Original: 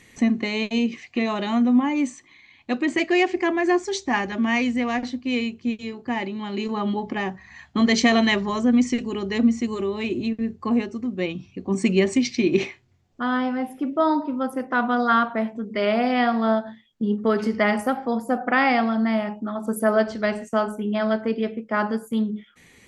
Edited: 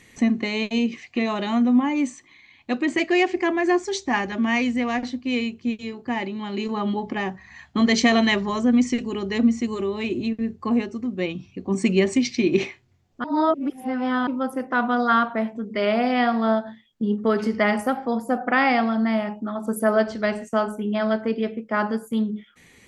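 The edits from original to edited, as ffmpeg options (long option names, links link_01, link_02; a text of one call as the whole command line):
ffmpeg -i in.wav -filter_complex "[0:a]asplit=3[link_01][link_02][link_03];[link_01]atrim=end=13.242[link_04];[link_02]atrim=start=13.238:end=14.272,asetpts=PTS-STARTPTS,areverse[link_05];[link_03]atrim=start=14.268[link_06];[link_04][link_05]acrossfade=duration=0.004:curve1=hsin:curve2=hsin[link_07];[link_07][link_06]acrossfade=duration=0.004:curve1=hsin:curve2=hsin" out.wav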